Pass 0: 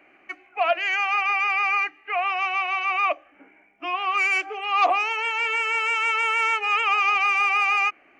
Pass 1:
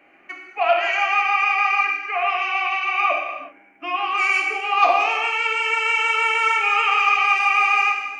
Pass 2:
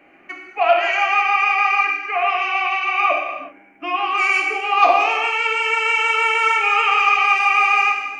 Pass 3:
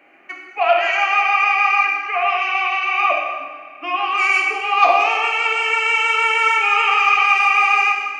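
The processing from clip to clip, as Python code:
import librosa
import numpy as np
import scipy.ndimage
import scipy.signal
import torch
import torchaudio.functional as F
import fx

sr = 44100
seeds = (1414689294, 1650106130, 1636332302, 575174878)

y1 = fx.rev_gated(x, sr, seeds[0], gate_ms=410, shape='falling', drr_db=-0.5)
y2 = fx.low_shelf(y1, sr, hz=410.0, db=6.5)
y2 = F.gain(torch.from_numpy(y2), 1.5).numpy()
y3 = fx.highpass(y2, sr, hz=470.0, slope=6)
y3 = fx.rev_freeverb(y3, sr, rt60_s=2.8, hf_ratio=0.75, predelay_ms=15, drr_db=11.0)
y3 = F.gain(torch.from_numpy(y3), 1.0).numpy()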